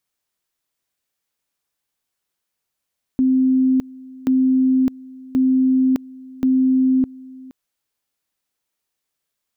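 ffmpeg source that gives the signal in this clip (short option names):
-f lavfi -i "aevalsrc='pow(10,(-12.5-22.5*gte(mod(t,1.08),0.61))/20)*sin(2*PI*260*t)':d=4.32:s=44100"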